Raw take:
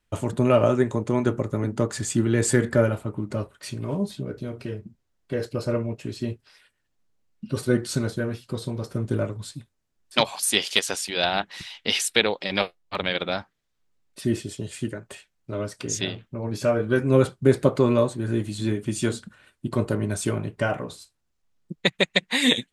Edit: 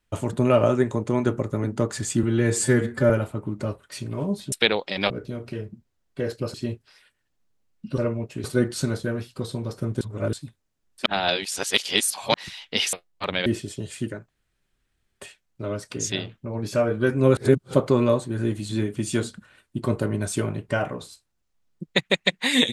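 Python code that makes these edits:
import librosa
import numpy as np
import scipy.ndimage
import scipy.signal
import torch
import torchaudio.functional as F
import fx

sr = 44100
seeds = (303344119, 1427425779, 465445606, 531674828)

y = fx.edit(x, sr, fx.stretch_span(start_s=2.23, length_s=0.58, factor=1.5),
    fx.move(start_s=5.67, length_s=0.46, to_s=7.57),
    fx.reverse_span(start_s=9.14, length_s=0.32),
    fx.reverse_span(start_s=10.19, length_s=1.28),
    fx.move(start_s=12.06, length_s=0.58, to_s=4.23),
    fx.cut(start_s=13.17, length_s=1.1),
    fx.insert_room_tone(at_s=15.1, length_s=0.92),
    fx.reverse_span(start_s=17.26, length_s=0.37), tone=tone)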